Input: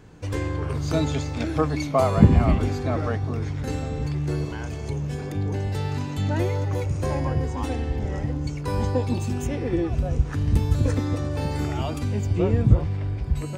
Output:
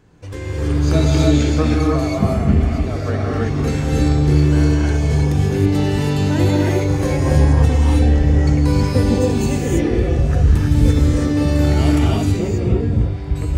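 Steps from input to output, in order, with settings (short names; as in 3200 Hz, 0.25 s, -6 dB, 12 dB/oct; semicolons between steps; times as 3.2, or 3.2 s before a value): dynamic EQ 940 Hz, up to -5 dB, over -40 dBFS, Q 1.5; AGC gain up to 10.5 dB; non-linear reverb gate 0.35 s rising, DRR -4 dB; gain -4.5 dB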